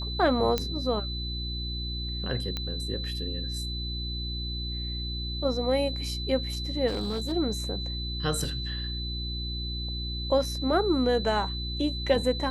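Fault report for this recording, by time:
hum 60 Hz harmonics 6 -34 dBFS
whine 4 kHz -35 dBFS
0.58 s: pop -12 dBFS
2.57 s: pop -17 dBFS
6.87–7.33 s: clipped -26 dBFS
8.44 s: dropout 2.2 ms

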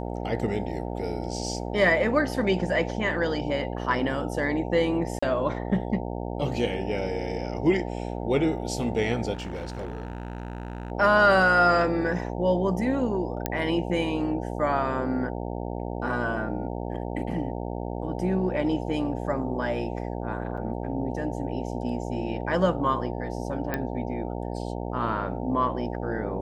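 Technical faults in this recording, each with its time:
buzz 60 Hz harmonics 15 -32 dBFS
5.19–5.22 s: dropout 35 ms
9.33–10.92 s: clipped -29 dBFS
13.46 s: pop -10 dBFS
20.57–20.58 s: dropout 6.2 ms
23.74 s: pop -14 dBFS

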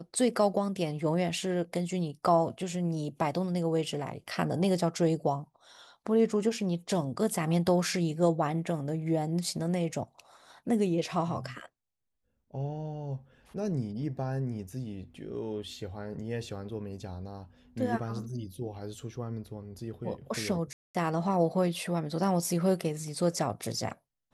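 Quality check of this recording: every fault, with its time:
20.73–20.95 s: dropout 216 ms

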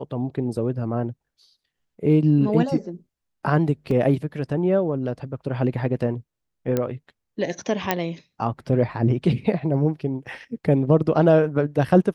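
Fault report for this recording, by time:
3.91 s: dropout 2.8 ms
6.77 s: pop -10 dBFS
7.91 s: pop -5 dBFS

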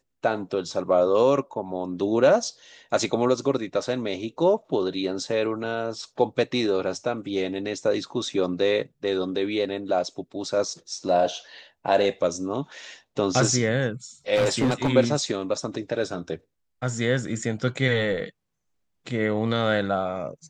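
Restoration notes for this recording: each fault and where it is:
14.35–14.90 s: clipped -17 dBFS

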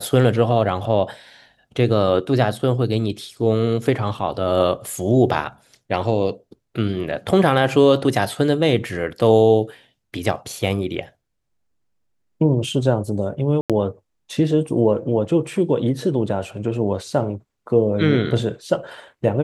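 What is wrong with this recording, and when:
13.61–13.70 s: dropout 87 ms

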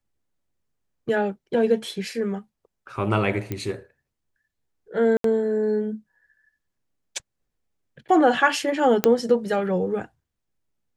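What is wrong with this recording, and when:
3.52 s: pop -15 dBFS
5.17–5.24 s: dropout 73 ms
9.04 s: pop -3 dBFS

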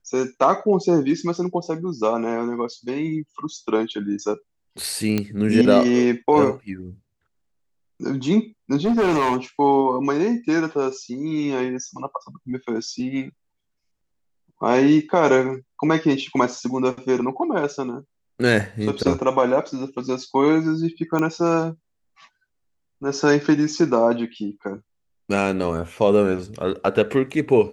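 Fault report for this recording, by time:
5.18 s: pop -9 dBFS
8.84–9.37 s: clipped -15.5 dBFS
21.19 s: pop -12 dBFS

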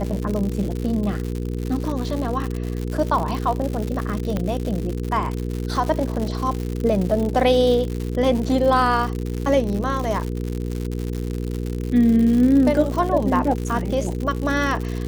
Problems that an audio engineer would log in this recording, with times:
crackle 140 per s -25 dBFS
hum 60 Hz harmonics 8 -26 dBFS
4.37 s: pop -12 dBFS

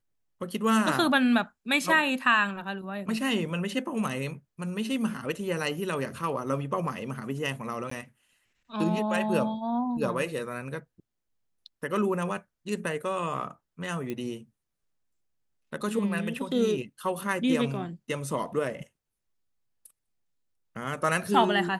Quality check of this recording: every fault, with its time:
7.90–7.91 s: dropout 14 ms
14.10 s: pop -21 dBFS

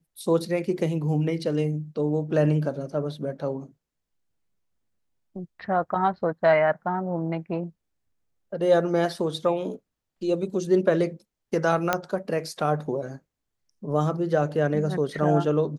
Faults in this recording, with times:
11.93 s: pop -7 dBFS

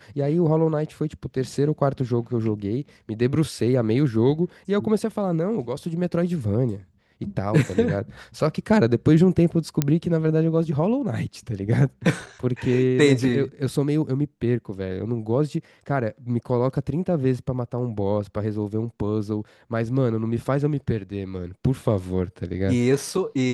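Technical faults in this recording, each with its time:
9.82 s: pop -6 dBFS

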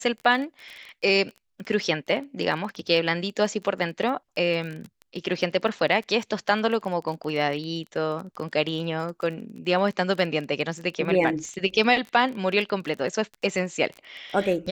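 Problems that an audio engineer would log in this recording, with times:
crackle 22 per s -32 dBFS

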